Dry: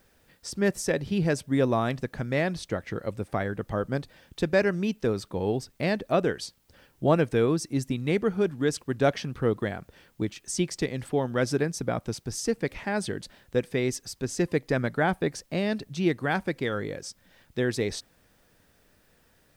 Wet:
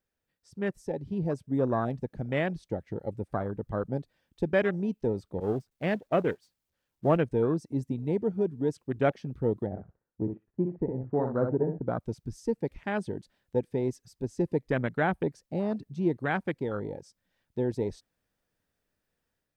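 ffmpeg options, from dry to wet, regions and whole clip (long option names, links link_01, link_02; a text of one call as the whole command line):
ffmpeg -i in.wav -filter_complex "[0:a]asettb=1/sr,asplit=3[link_01][link_02][link_03];[link_01]atrim=end=5.404[link_04];[link_02]atrim=start=5.4:end=7.17,asetpts=PTS-STARTPTS,afade=type=in:duration=0.004:curve=qsin,afade=type=out:start_time=1.766:duration=0.004:curve=qsin,aeval=exprs='val(0)+0.5*0.0266*sgn(val(0))':channel_layout=same,agate=range=-33dB:threshold=-23dB:ratio=3:release=100:detection=peak[link_05];[link_03]atrim=start=7.166[link_06];[link_04][link_05]acrossfade=duration=0.004:curve1=hsin:curve2=qsin[link_07];[link_07][link_06]acrossfade=duration=0.004:curve1=qsin:curve2=hsin,asettb=1/sr,asplit=3[link_08][link_09][link_10];[link_08]atrim=end=9.664[link_11];[link_09]atrim=start=9.66:end=11.87,asetpts=PTS-STARTPTS,afade=type=in:duration=0.004:curve=qsin,afade=type=out:start_time=2.206:duration=0.004:curve=qsin,lowpass=frequency=1400:width=0.5412,lowpass=frequency=1400:width=1.3066,agate=range=-12dB:threshold=-56dB:ratio=16:release=100:detection=peak,aecho=1:1:62|124|186:0.501|0.12|0.0289,atrim=end_sample=97461[link_12];[link_10]atrim=start=11.866[link_13];[link_11][link_12]acrossfade=duration=0.004:curve1=hsin:curve2=qsin[link_14];[link_14][link_13]acrossfade=duration=0.004:curve1=qsin:curve2=hsin,afwtdn=0.0282,dynaudnorm=framelen=920:gausssize=3:maxgain=5dB,volume=-7dB" out.wav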